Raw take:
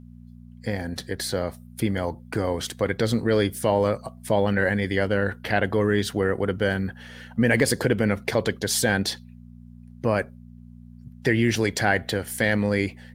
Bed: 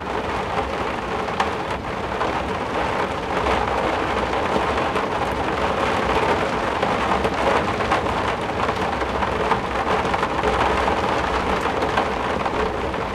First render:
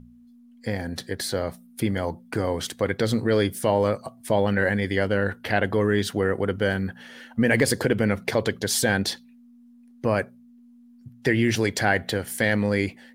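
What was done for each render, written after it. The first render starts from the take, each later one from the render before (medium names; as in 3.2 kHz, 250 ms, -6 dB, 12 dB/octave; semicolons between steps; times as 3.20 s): de-hum 60 Hz, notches 3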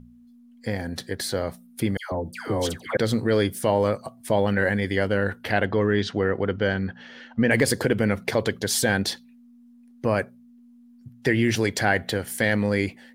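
1.97–2.97 s: phase dispersion lows, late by 147 ms, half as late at 1.2 kHz; 5.65–7.51 s: low-pass 5.7 kHz 24 dB/octave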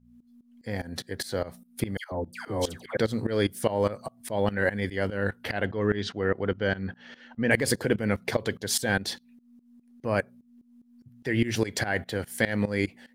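tremolo saw up 4.9 Hz, depth 90%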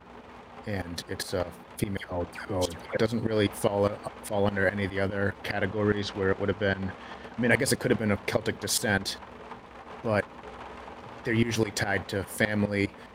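add bed -23.5 dB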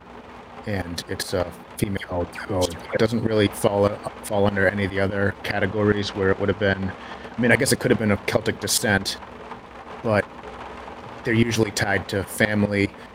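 trim +6 dB; peak limiter -2 dBFS, peak gain reduction 1 dB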